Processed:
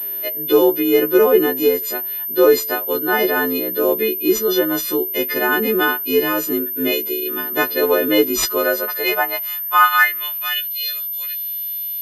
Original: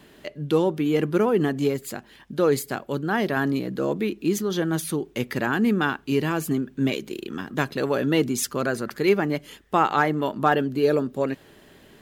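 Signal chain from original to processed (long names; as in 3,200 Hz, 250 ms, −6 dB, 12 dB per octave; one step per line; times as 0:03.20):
every partial snapped to a pitch grid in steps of 3 semitones
high-pass filter sweep 380 Hz → 3,600 Hz, 0:08.53–0:10.78
switching amplifier with a slow clock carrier 13,000 Hz
level +2.5 dB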